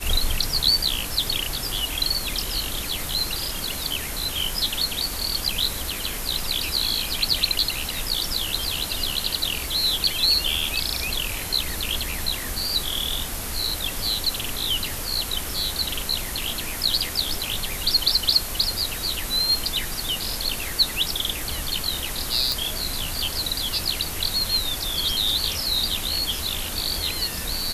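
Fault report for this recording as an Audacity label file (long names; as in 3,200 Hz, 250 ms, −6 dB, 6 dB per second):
22.520000	22.520000	click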